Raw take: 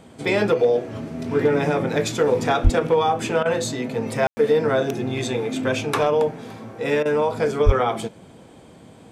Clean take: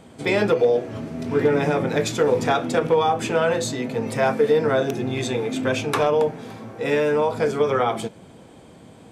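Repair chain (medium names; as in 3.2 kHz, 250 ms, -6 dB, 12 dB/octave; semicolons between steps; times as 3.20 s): de-plosive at 2.63/7.65 s; room tone fill 4.27–4.37 s; interpolate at 3.43/7.03 s, 23 ms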